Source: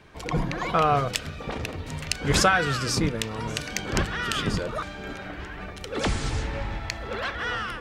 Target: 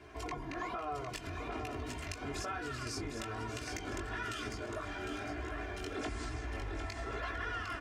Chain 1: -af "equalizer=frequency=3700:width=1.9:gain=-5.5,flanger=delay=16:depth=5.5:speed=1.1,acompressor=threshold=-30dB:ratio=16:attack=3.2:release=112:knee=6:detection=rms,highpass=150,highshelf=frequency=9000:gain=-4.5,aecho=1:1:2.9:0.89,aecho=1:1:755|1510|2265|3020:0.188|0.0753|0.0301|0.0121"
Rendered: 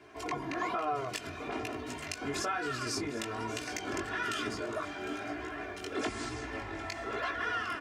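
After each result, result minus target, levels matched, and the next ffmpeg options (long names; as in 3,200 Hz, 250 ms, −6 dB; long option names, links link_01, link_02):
125 Hz band −7.0 dB; downward compressor: peak gain reduction −6.5 dB; echo-to-direct −7.5 dB
-af "equalizer=frequency=3700:width=1.9:gain=-5.5,flanger=delay=16:depth=5.5:speed=1.1,acompressor=threshold=-30dB:ratio=16:attack=3.2:release=112:knee=6:detection=rms,highpass=46,highshelf=frequency=9000:gain=-4.5,aecho=1:1:2.9:0.89,aecho=1:1:755|1510|2265|3020:0.188|0.0753|0.0301|0.0121"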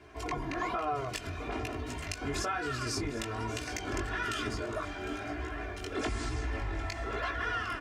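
downward compressor: peak gain reduction −6.5 dB; echo-to-direct −7.5 dB
-af "equalizer=frequency=3700:width=1.9:gain=-5.5,flanger=delay=16:depth=5.5:speed=1.1,acompressor=threshold=-37dB:ratio=16:attack=3.2:release=112:knee=6:detection=rms,highpass=46,highshelf=frequency=9000:gain=-4.5,aecho=1:1:2.9:0.89,aecho=1:1:755|1510|2265|3020:0.188|0.0753|0.0301|0.0121"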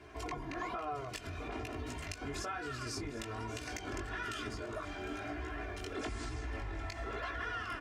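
echo-to-direct −7.5 dB
-af "equalizer=frequency=3700:width=1.9:gain=-5.5,flanger=delay=16:depth=5.5:speed=1.1,acompressor=threshold=-37dB:ratio=16:attack=3.2:release=112:knee=6:detection=rms,highpass=46,highshelf=frequency=9000:gain=-4.5,aecho=1:1:2.9:0.89,aecho=1:1:755|1510|2265|3020|3775:0.447|0.179|0.0715|0.0286|0.0114"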